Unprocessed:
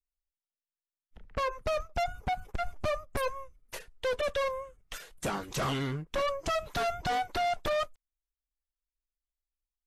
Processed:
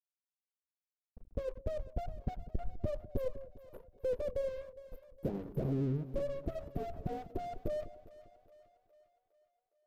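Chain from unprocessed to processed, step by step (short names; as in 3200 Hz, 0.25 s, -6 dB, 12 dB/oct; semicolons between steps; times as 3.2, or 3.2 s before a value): inverse Chebyshev band-stop 2100–6100 Hz, stop band 80 dB; crossover distortion -52.5 dBFS; split-band echo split 580 Hz, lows 0.2 s, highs 0.411 s, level -15.5 dB; gain +1 dB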